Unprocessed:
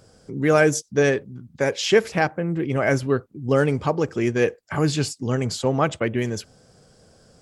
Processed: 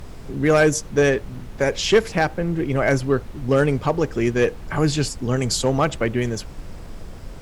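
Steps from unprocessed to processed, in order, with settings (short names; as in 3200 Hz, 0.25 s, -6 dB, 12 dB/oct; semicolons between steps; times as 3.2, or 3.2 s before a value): 5.36–5.82 high shelf 4200 Hz +9.5 dB; added noise brown -34 dBFS; one-sided clip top -10.5 dBFS; gain +1.5 dB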